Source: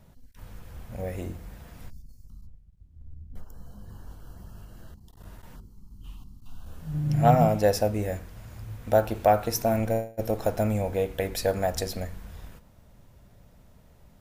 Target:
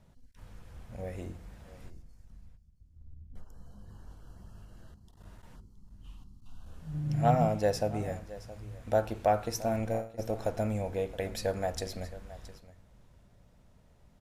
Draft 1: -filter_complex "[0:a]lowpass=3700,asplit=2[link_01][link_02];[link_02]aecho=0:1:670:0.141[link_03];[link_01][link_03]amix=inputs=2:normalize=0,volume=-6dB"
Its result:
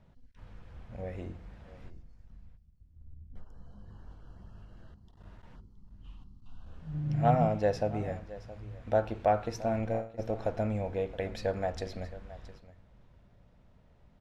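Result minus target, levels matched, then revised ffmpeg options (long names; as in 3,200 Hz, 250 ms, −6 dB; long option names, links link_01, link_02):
8,000 Hz band −10.0 dB
-filter_complex "[0:a]lowpass=10000,asplit=2[link_01][link_02];[link_02]aecho=0:1:670:0.141[link_03];[link_01][link_03]amix=inputs=2:normalize=0,volume=-6dB"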